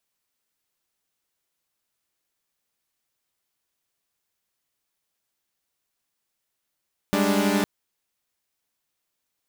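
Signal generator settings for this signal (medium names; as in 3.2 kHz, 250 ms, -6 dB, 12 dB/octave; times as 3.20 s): chord G3/G#3/D4 saw, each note -21.5 dBFS 0.51 s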